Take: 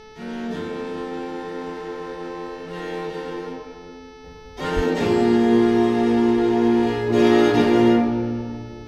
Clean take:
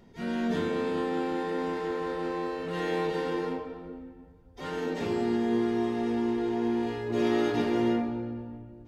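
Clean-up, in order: de-hum 434.1 Hz, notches 14; 4.75–4.87 HPF 140 Hz 24 dB/oct; expander -31 dBFS, range -21 dB; gain 0 dB, from 4.24 s -10.5 dB

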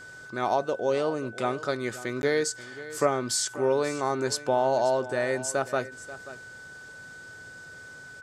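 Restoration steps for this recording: notch 1500 Hz, Q 30; interpolate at 2.22, 11 ms; inverse comb 0.535 s -16 dB

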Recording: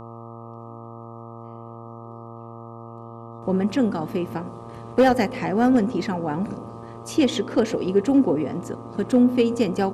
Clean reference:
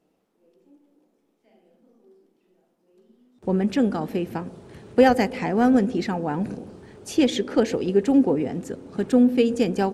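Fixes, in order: clip repair -9.5 dBFS; de-hum 115.7 Hz, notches 11; notch 1200 Hz, Q 30

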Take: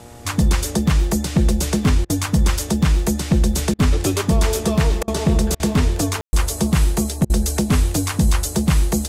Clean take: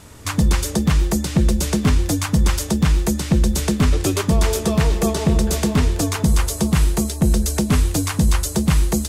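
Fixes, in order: de-hum 119 Hz, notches 7; room tone fill 6.21–6.33; interpolate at 2.05/3.74/5.03/5.55/7.25, 47 ms

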